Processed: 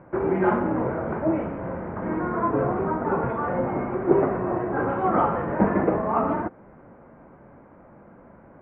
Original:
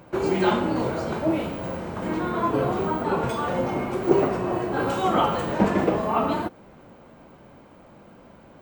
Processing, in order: steep low-pass 2000 Hz 36 dB/oct

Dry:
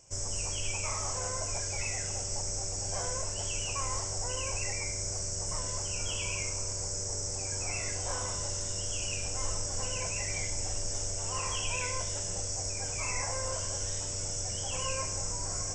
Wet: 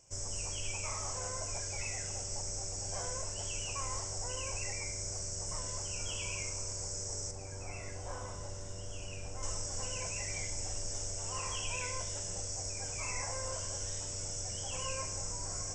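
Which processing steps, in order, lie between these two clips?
7.31–9.43 high shelf 2500 Hz -11 dB; gain -4.5 dB

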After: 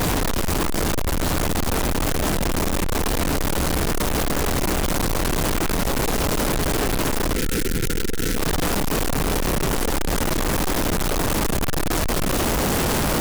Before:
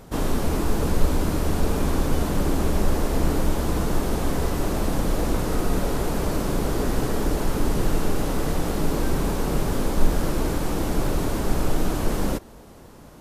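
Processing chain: infinite clipping; spectral gain 7.35–8.37, 520–1300 Hz -15 dB

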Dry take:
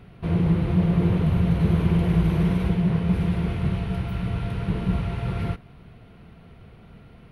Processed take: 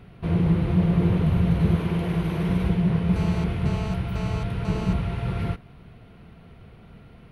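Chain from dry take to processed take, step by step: 1.76–2.49 low shelf 140 Hz -10.5 dB; 3.16–4.93 GSM buzz -37 dBFS

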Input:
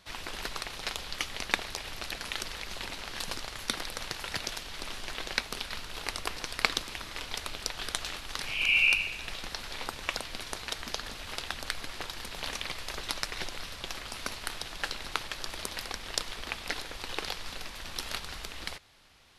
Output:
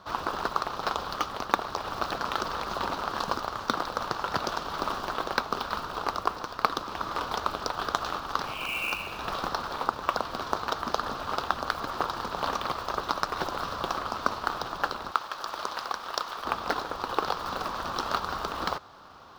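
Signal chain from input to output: LPF 5900 Hz 24 dB/oct; short-mantissa float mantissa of 2-bit; resonant high shelf 1600 Hz -9 dB, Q 3; vocal rider 0.5 s; HPF 150 Hz 6 dB/oct, from 15.11 s 960 Hz, from 16.45 s 180 Hz; gain +9 dB

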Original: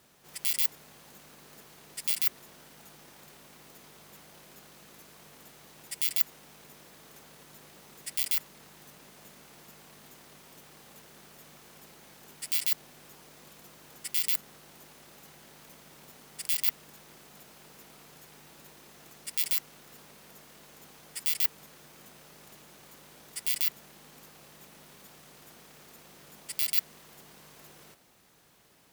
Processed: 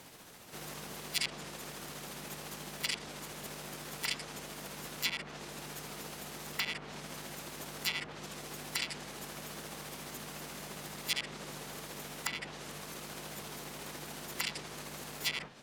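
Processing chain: whole clip reversed; granular stretch 0.54×, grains 0.141 s; treble ducked by the level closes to 1900 Hz, closed at -27.5 dBFS; gain +10.5 dB

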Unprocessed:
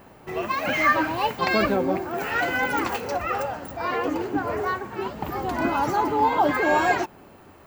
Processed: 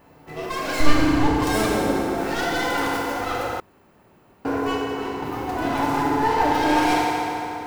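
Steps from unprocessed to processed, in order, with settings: tracing distortion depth 0.38 ms; 0.8–1.35 RIAA curve playback; FDN reverb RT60 3.5 s, high-frequency decay 0.65×, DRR -5.5 dB; 3.6–4.45 room tone; gain -6.5 dB

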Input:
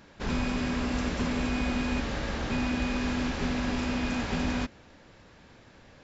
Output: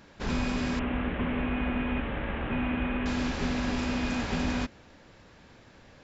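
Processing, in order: 0.79–3.06 CVSD 16 kbps

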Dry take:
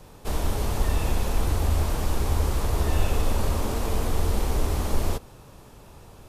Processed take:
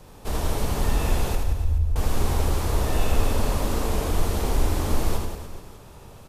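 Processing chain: 1.35–1.96 spectral contrast raised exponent 2.1; reverse bouncing-ball echo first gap 80 ms, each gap 1.2×, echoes 5

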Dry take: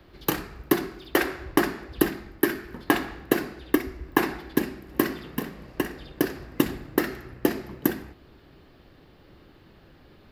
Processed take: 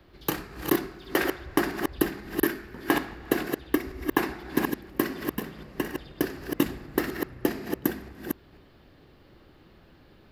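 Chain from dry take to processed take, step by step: reverse delay 0.245 s, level -5 dB; gain -3 dB

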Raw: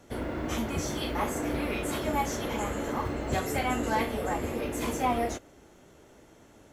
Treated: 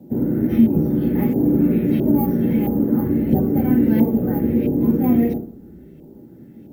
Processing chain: small resonant body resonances 820/3600 Hz, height 10 dB, ringing for 75 ms; reverb RT60 0.45 s, pre-delay 3 ms, DRR 3 dB; LFO low-pass saw up 1.5 Hz 840–2500 Hz; careless resampling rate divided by 3×, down none, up hold; EQ curve 100 Hz 0 dB, 360 Hz +1 dB, 920 Hz -27 dB, 2500 Hz -7 dB; requantised 12-bit, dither none

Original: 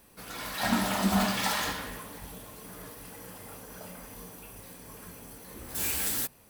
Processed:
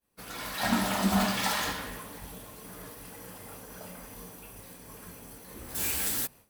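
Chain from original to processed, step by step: expander -46 dBFS

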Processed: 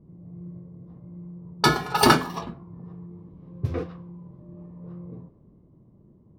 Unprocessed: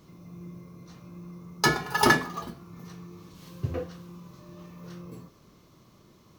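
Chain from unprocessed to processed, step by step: formant shift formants -2 st; low-pass opened by the level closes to 350 Hz, open at -24.5 dBFS; gain +3.5 dB

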